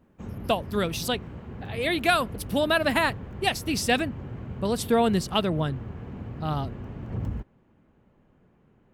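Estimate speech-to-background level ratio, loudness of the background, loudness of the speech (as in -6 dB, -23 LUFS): 11.5 dB, -38.0 LUFS, -26.5 LUFS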